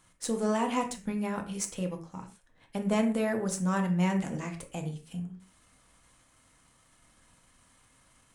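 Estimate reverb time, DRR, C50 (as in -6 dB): not exponential, 4.0 dB, 11.0 dB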